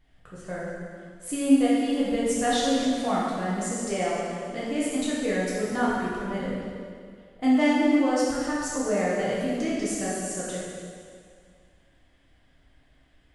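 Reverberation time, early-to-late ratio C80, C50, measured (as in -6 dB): 2.1 s, 0.0 dB, -2.0 dB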